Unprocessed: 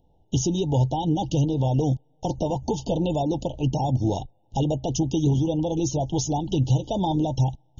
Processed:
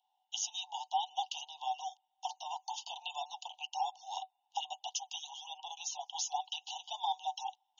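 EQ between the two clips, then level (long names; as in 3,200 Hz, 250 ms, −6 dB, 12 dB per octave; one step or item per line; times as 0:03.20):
Chebyshev high-pass with heavy ripple 730 Hz, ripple 9 dB
+1.0 dB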